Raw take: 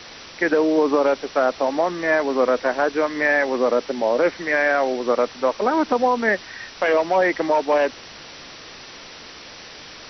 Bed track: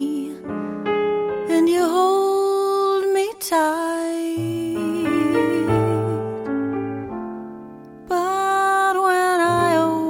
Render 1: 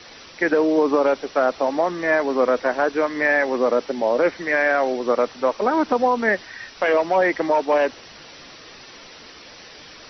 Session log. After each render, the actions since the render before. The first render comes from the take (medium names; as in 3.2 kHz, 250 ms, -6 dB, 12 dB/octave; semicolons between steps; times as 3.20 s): noise reduction 6 dB, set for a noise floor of -41 dBFS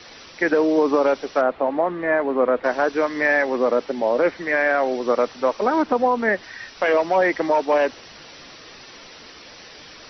1.41–2.64 s: Gaussian low-pass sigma 3.1 samples; 3.42–4.92 s: distance through air 78 m; 5.82–6.43 s: treble shelf 4.3 kHz -9 dB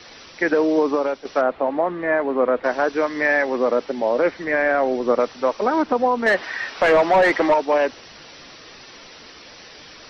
0.78–1.25 s: fade out, to -8.5 dB; 4.44–5.20 s: tilt EQ -1.5 dB/octave; 6.26–7.54 s: overdrive pedal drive 19 dB, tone 1.6 kHz, clips at -7 dBFS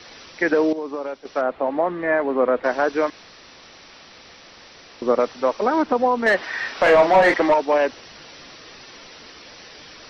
0.73–1.83 s: fade in, from -13 dB; 3.10–5.02 s: room tone; 6.49–7.34 s: doubling 39 ms -6 dB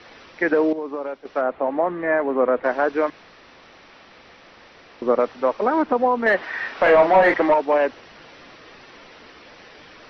tone controls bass -1 dB, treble -15 dB; hum notches 50/100/150 Hz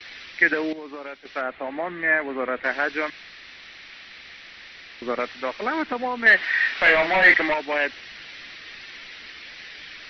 gate with hold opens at -40 dBFS; ten-band graphic EQ 125 Hz -4 dB, 250 Hz -4 dB, 500 Hz -8 dB, 1 kHz -8 dB, 2 kHz +9 dB, 4 kHz +8 dB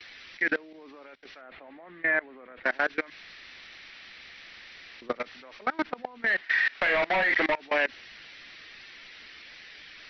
level held to a coarse grid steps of 24 dB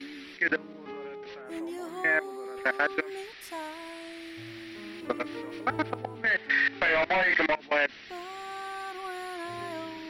add bed track -20.5 dB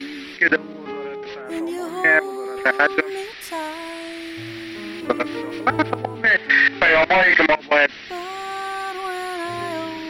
trim +10 dB; peak limiter -2 dBFS, peak gain reduction 1 dB